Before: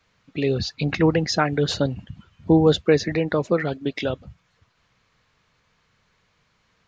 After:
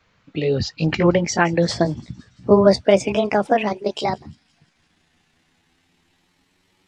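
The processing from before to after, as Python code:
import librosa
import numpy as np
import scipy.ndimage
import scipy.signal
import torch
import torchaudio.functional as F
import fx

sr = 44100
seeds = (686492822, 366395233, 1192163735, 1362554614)

y = fx.pitch_glide(x, sr, semitones=11.0, runs='starting unshifted')
y = fx.high_shelf(y, sr, hz=5000.0, db=-7.5)
y = fx.echo_wet_highpass(y, sr, ms=170, feedback_pct=60, hz=5200.0, wet_db=-20.0)
y = y * librosa.db_to_amplitude(4.5)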